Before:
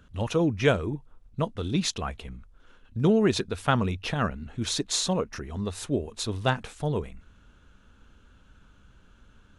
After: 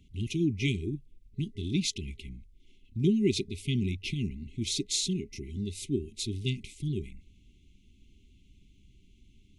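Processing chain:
brick-wall band-stop 410–2,000 Hz
level −2.5 dB

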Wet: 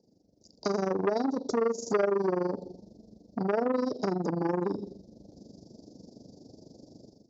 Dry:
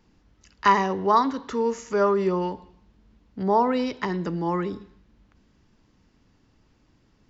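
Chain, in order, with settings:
amplitude modulation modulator 24 Hz, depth 60%
automatic gain control gain up to 16 dB
elliptic band-stop filter 630–5,000 Hz, stop band 40 dB
high-frequency loss of the air 120 metres
downward compressor 16 to 1, threshold −25 dBFS, peak gain reduction 17.5 dB
high-pass filter 120 Hz 12 dB per octave
low-shelf EQ 230 Hz −11 dB
saturating transformer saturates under 900 Hz
level +7.5 dB

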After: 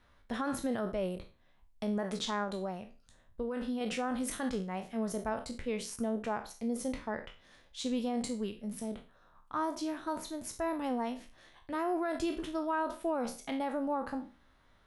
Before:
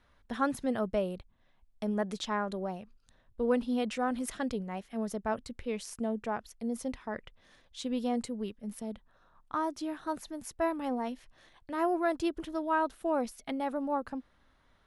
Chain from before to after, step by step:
peak hold with a decay on every bin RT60 0.34 s
brickwall limiter −24.5 dBFS, peak gain reduction 9.5 dB
0:02.43–0:03.81: downward compressor, threshold −32 dBFS, peak gain reduction 4.5 dB

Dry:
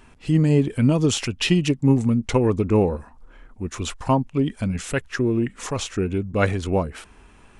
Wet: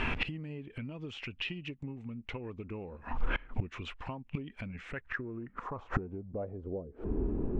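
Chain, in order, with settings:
downward compressor 16 to 1, threshold −31 dBFS, peak gain reduction 20.5 dB
low-pass filter sweep 2,600 Hz → 360 Hz, 0:04.59–0:07.13
gate with flip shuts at −35 dBFS, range −24 dB
level +17 dB

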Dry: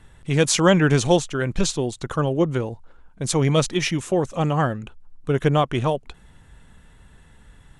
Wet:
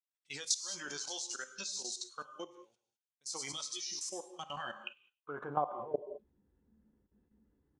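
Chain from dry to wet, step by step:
double-tracking delay 14 ms −8 dB
band-pass filter sweep 5,400 Hz → 330 Hz, 0:04.44–0:06.13
noise gate with hold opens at −56 dBFS
low-shelf EQ 390 Hz +6.5 dB
notch filter 630 Hz, Q 12
delay with a high-pass on its return 99 ms, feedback 31%, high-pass 4,200 Hz, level −8.5 dB
output level in coarse steps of 23 dB
low-shelf EQ 120 Hz −10.5 dB
reverb whose tail is shaped and stops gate 230 ms flat, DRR 9 dB
downward compressor 2.5 to 1, threshold −43 dBFS, peak gain reduction 15 dB
noise reduction from a noise print of the clip's start 13 dB
level +7 dB

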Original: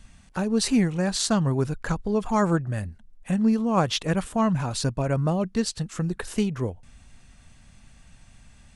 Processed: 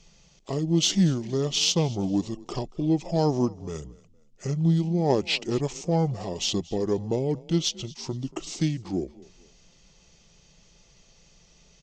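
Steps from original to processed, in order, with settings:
octave-band graphic EQ 125/250/500/1,000/2,000/4,000/8,000 Hz −8/+7/+9/+4/−8/+8/+10 dB
wrong playback speed 45 rpm record played at 33 rpm
on a send: echo with shifted repeats 231 ms, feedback 32%, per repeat +31 Hz, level −22 dB
on the sum: harmonic generator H 4 −42 dB, 8 −40 dB, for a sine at 1 dBFS
level −7 dB

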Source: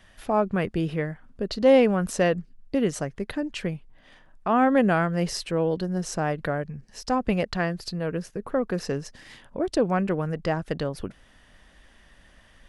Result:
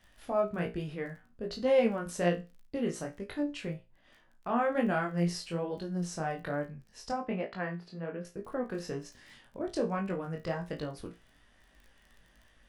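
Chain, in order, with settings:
chorus effect 1.2 Hz, delay 20 ms, depth 5.3 ms
surface crackle 16 per second −41 dBFS
0:07.12–0:08.25: three-way crossover with the lows and the highs turned down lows −18 dB, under 160 Hz, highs −20 dB, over 3,000 Hz
tuned comb filter 58 Hz, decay 0.26 s, harmonics all, mix 80%

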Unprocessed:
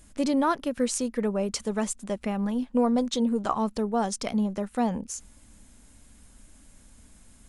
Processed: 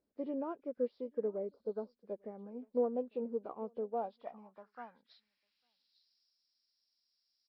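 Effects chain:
hearing-aid frequency compression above 1,400 Hz 1.5 to 1
on a send: single-tap delay 850 ms −22.5 dB
on the sum: healed spectral selection 0:01.51–0:01.91, 1,600–4,600 Hz after
in parallel at −11.5 dB: hard clipping −26.5 dBFS, distortion −8 dB
on the sum: band-pass filter sweep 450 Hz → 6,500 Hz, 0:03.74–0:06.39
expander for the loud parts 1.5 to 1, over −48 dBFS
level −4.5 dB

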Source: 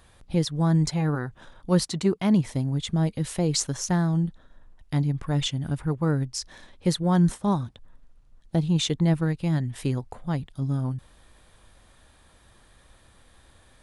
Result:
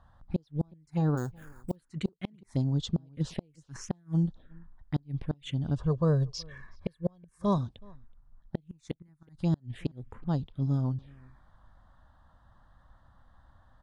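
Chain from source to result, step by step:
low-pass that shuts in the quiet parts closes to 2,000 Hz, open at −18.5 dBFS
0:01.17–0:01.76: sample-rate reduction 8,300 Hz, jitter 0%
0:05.76–0:07.58: comb filter 1.8 ms, depth 68%
gate with flip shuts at −15 dBFS, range −36 dB
phaser swept by the level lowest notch 380 Hz, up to 2,200 Hz, full sweep at −25.5 dBFS
slap from a distant wall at 64 metres, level −26 dB
level −1.5 dB

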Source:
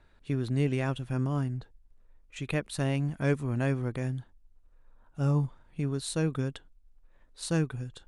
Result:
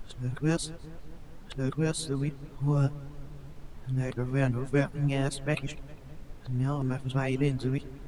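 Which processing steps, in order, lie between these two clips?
played backwards from end to start
reverb reduction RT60 0.52 s
background noise brown −46 dBFS
on a send: feedback echo with a low-pass in the loop 203 ms, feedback 63%, low-pass 2,400 Hz, level −18.5 dB
on the sum: flanger 1.9 Hz, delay 2.2 ms, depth 6.2 ms, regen +66%
level +6 dB

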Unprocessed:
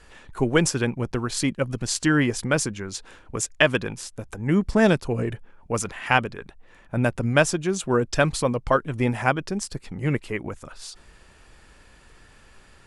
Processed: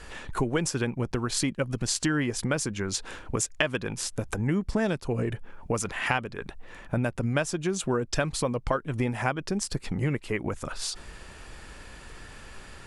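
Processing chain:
downward compressor 4 to 1, threshold −33 dBFS, peak gain reduction 17.5 dB
level +7 dB

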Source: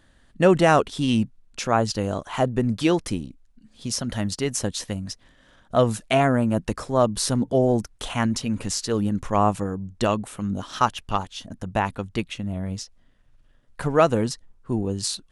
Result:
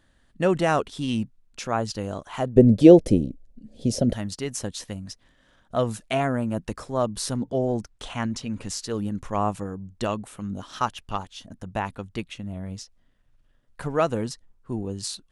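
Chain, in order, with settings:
0:02.56–0:04.13: low shelf with overshoot 790 Hz +11.5 dB, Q 3
0:07.37–0:08.66: low-pass filter 8,000 Hz 12 dB per octave
level −5 dB

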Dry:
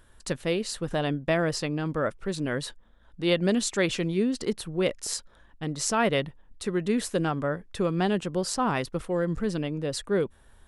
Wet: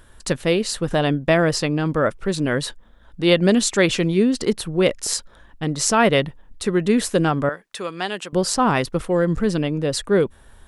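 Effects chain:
0:07.49–0:08.33: high-pass filter 1,400 Hz 6 dB per octave
level +8 dB

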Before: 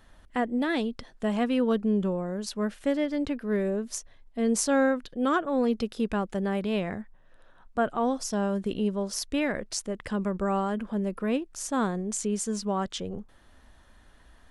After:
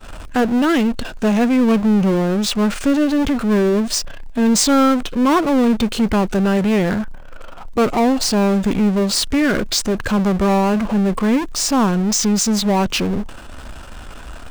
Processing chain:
power curve on the samples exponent 0.5
downward expander −31 dBFS
formants moved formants −3 semitones
level +6 dB

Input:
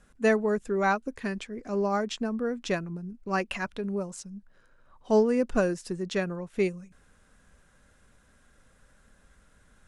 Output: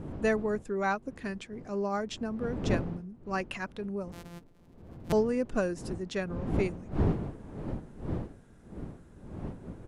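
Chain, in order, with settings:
0:04.12–0:05.13: samples sorted by size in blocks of 256 samples
wind on the microphone 260 Hz −33 dBFS
downsampling to 32,000 Hz
level −4.5 dB

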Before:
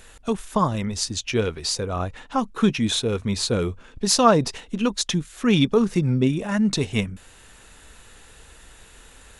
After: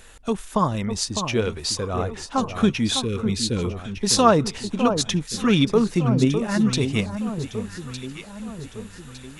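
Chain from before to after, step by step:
0:02.96–0:03.65: Butterworth band-reject 880 Hz, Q 0.58
delay that swaps between a low-pass and a high-pass 604 ms, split 1,300 Hz, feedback 66%, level −7.5 dB

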